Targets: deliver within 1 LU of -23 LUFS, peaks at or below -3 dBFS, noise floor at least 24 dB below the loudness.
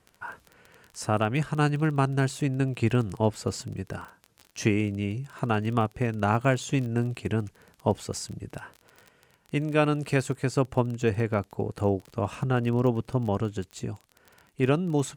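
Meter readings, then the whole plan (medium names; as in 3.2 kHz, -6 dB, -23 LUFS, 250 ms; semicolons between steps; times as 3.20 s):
tick rate 26 per s; loudness -27.5 LUFS; peak level -9.5 dBFS; loudness target -23.0 LUFS
-> de-click; trim +4.5 dB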